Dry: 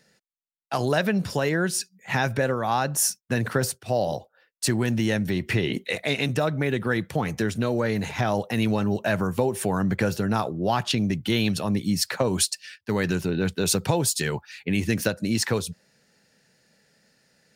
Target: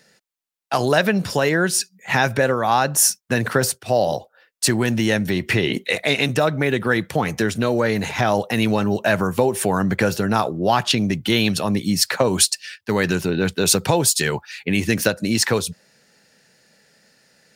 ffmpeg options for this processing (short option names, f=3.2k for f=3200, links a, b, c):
-af "lowshelf=f=240:g=-6,volume=7dB"